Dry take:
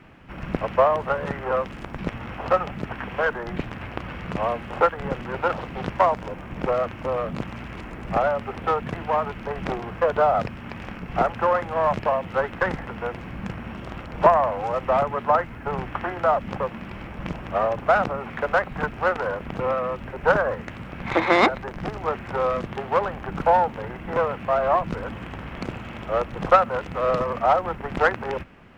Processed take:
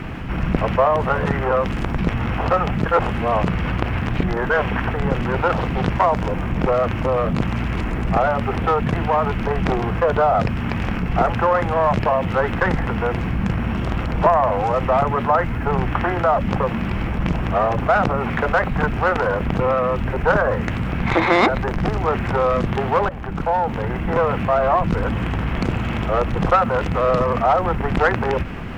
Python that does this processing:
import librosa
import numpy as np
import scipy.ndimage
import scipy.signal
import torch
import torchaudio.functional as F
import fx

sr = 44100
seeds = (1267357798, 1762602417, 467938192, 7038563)

y = fx.edit(x, sr, fx.reverse_span(start_s=2.86, length_s=2.08),
    fx.fade_in_from(start_s=23.09, length_s=1.15, floor_db=-23.0), tone=tone)
y = fx.low_shelf(y, sr, hz=170.0, db=8.0)
y = fx.notch(y, sr, hz=570.0, q=15.0)
y = fx.env_flatten(y, sr, amount_pct=50)
y = y * librosa.db_to_amplitude(-1.0)